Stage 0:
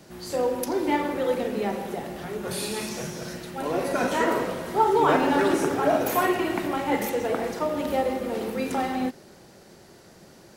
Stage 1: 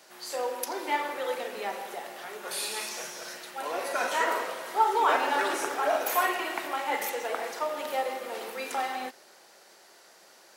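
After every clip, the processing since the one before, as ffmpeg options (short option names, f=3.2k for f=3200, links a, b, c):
-af "highpass=730"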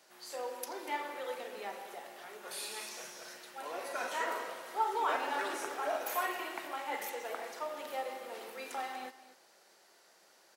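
-af "aecho=1:1:242:0.168,volume=-8.5dB"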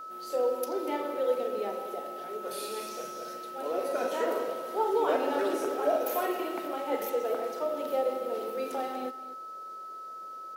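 -af "equalizer=f=250:t=o:w=1:g=6,equalizer=f=500:t=o:w=1:g=8,equalizer=f=1k:t=o:w=1:g=-8,equalizer=f=2k:t=o:w=1:g=-8,equalizer=f=4k:t=o:w=1:g=-3,equalizer=f=8k:t=o:w=1:g=-8,aeval=exprs='val(0)+0.00501*sin(2*PI*1300*n/s)':c=same,volume=6.5dB"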